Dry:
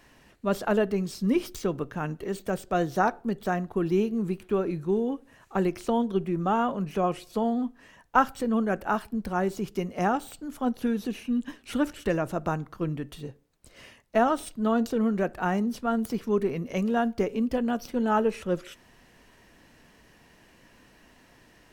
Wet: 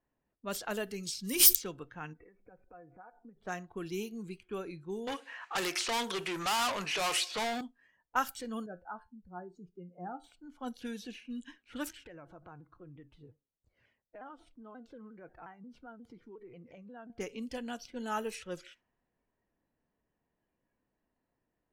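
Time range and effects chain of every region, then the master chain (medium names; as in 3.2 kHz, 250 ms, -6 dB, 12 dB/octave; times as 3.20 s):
1.03–1.55 s: treble shelf 4.7 kHz +12 dB + decay stretcher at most 36 dB/s
2.13–3.37 s: brick-wall FIR low-pass 2.7 kHz + compression 10:1, threshold -36 dBFS + comb 4.1 ms, depth 34%
5.07–7.61 s: bass shelf 430 Hz -10.5 dB + overdrive pedal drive 30 dB, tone 3.1 kHz, clips at -15 dBFS
8.66–10.24 s: spectral contrast enhancement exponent 1.7 + peaking EQ 2.3 kHz -5.5 dB 0.69 oct + feedback comb 88 Hz, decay 0.27 s
11.89–17.10 s: treble shelf 5 kHz -5 dB + compression 4:1, threshold -34 dBFS + vibrato with a chosen wave saw down 5.6 Hz, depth 160 cents
whole clip: spectral noise reduction 11 dB; level-controlled noise filter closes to 760 Hz, open at -20.5 dBFS; pre-emphasis filter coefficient 0.9; trim +5.5 dB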